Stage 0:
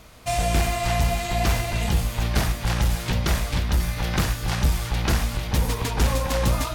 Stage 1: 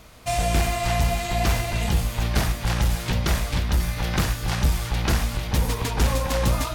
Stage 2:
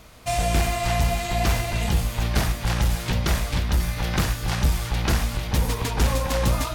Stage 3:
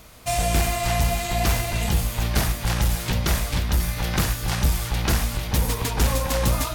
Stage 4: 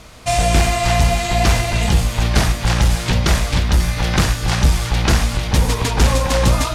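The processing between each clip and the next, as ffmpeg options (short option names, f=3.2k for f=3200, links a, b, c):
-af "acrusher=bits=11:mix=0:aa=0.000001"
-af anull
-af "highshelf=f=8.4k:g=8"
-af "lowpass=8k,volume=7dB"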